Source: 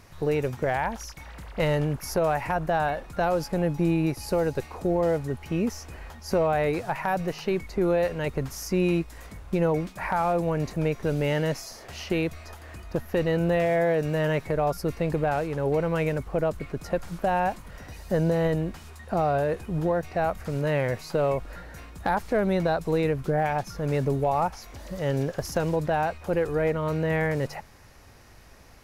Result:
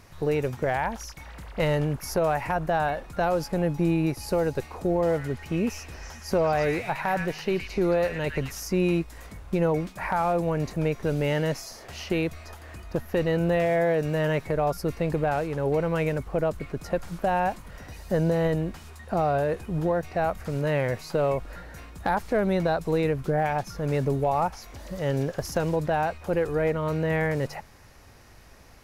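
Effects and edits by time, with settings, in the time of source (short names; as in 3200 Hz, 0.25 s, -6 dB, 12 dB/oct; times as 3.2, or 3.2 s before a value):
4.91–8.6 delay with a stepping band-pass 0.11 s, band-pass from 2000 Hz, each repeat 0.7 oct, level -1 dB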